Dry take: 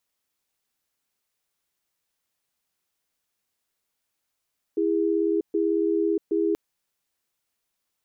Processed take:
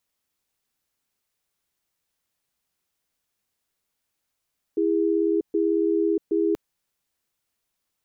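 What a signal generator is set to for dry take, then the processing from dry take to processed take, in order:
cadence 330 Hz, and 408 Hz, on 0.64 s, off 0.13 s, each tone -23 dBFS 1.78 s
bass shelf 220 Hz +4.5 dB

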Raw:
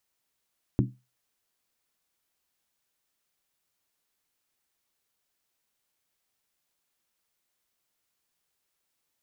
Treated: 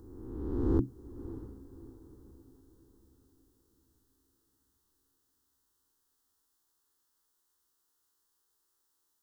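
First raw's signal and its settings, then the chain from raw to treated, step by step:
skin hit, lowest mode 126 Hz, decay 0.27 s, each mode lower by 2.5 dB, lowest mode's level -18.5 dB
reverse spectral sustain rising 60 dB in 1.58 s; static phaser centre 630 Hz, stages 6; echo that smears into a reverb 623 ms, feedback 43%, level -14 dB

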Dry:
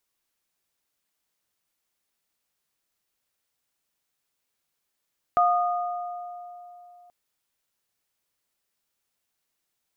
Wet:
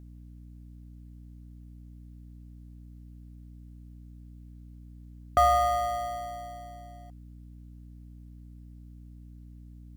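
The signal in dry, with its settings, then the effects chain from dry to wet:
sine partials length 1.73 s, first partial 709 Hz, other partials 1.23 kHz, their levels -1 dB, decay 3.19 s, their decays 1.95 s, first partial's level -18 dB
in parallel at -8 dB: sample-rate reducer 1.3 kHz, jitter 0%; on the sum: hum 60 Hz, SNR 12 dB

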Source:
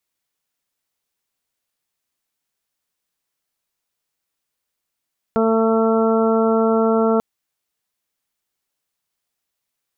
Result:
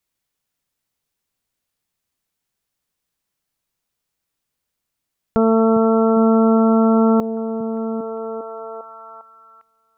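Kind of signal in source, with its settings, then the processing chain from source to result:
steady additive tone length 1.84 s, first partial 224 Hz, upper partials 1/-4/-9.5/-12.5/-7.5 dB, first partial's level -18 dB
bass shelf 190 Hz +8.5 dB; repeats whose band climbs or falls 402 ms, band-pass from 150 Hz, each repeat 0.7 oct, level -5 dB

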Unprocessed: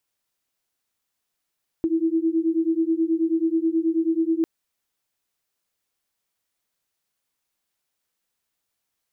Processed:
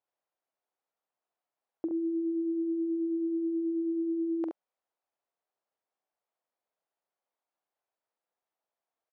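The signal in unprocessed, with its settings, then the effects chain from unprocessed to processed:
beating tones 322 Hz, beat 9.3 Hz, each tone -22 dBFS 2.60 s
band-pass filter 690 Hz, Q 1.6; on a send: early reflections 45 ms -10.5 dB, 70 ms -6.5 dB

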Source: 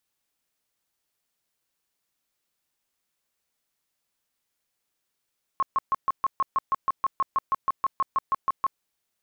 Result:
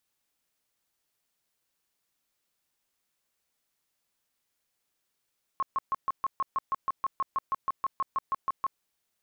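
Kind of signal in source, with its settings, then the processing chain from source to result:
tone bursts 1.08 kHz, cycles 28, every 0.16 s, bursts 20, -19 dBFS
peak limiter -24 dBFS

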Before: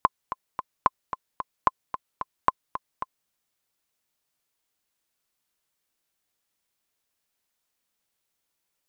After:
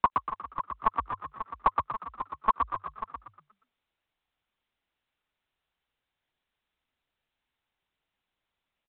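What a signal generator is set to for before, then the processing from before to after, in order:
metronome 222 bpm, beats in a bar 3, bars 4, 1.04 kHz, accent 11.5 dB -4.5 dBFS
monotone LPC vocoder at 8 kHz 220 Hz; peaking EQ 110 Hz -9 dB 0.79 oct; frequency-shifting echo 119 ms, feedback 39%, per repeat +48 Hz, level -4.5 dB

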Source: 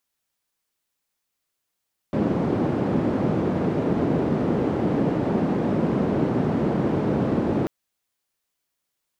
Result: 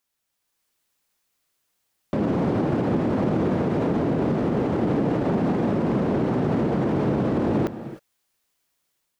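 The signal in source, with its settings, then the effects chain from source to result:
noise band 160–290 Hz, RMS -22.5 dBFS 5.54 s
level rider gain up to 5.5 dB; peak limiter -15.5 dBFS; gated-style reverb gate 330 ms rising, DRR 11.5 dB

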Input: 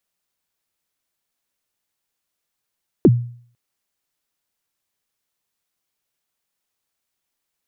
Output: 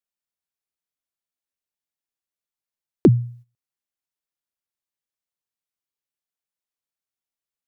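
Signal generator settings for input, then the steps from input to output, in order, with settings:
kick drum length 0.50 s, from 430 Hz, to 120 Hz, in 43 ms, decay 0.52 s, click off, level -4.5 dB
gate -42 dBFS, range -14 dB

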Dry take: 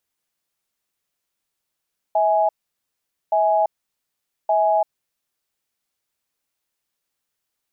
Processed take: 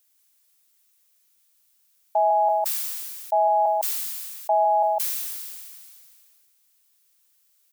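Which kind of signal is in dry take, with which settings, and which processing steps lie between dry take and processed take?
cadence 647 Hz, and 833 Hz, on 0.34 s, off 0.83 s, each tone -17.5 dBFS 3.16 s
tilt EQ +4 dB/octave; delay 154 ms -5 dB; decay stretcher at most 26 dB/s

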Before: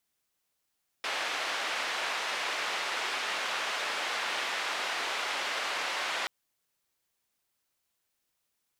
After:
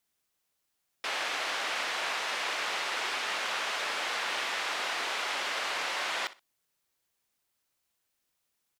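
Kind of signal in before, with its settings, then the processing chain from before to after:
noise band 590–2800 Hz, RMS -33 dBFS 5.23 s
feedback delay 62 ms, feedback 22%, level -17 dB

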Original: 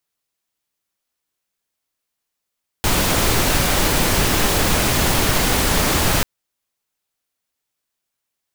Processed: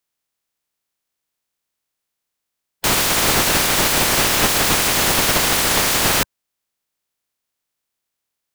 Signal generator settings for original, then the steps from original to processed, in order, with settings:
noise pink, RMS -17 dBFS 3.39 s
spectral peaks clipped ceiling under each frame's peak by 17 dB

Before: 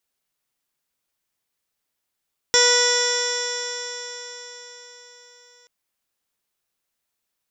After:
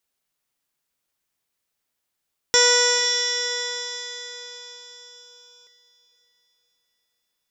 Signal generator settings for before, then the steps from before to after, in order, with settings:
stretched partials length 3.13 s, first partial 486 Hz, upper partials -6.5/-4.5/-3/-12.5/-14/-3/-11/-17/-7.5/3/-5.5/-17/-2 dB, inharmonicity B 0.0007, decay 4.73 s, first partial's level -19.5 dB
echo that smears into a reverb 498 ms, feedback 42%, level -12.5 dB

